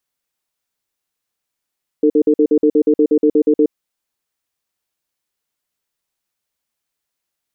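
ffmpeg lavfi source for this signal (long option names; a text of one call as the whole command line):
ffmpeg -f lavfi -i "aevalsrc='0.266*(sin(2*PI*303*t)+sin(2*PI*450*t))*clip(min(mod(t,0.12),0.07-mod(t,0.12))/0.005,0,1)':duration=1.68:sample_rate=44100" out.wav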